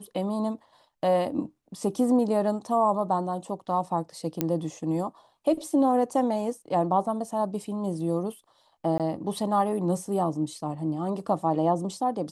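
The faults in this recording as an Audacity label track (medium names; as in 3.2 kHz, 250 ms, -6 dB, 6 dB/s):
4.410000	4.410000	pop -11 dBFS
8.980000	9.000000	dropout 17 ms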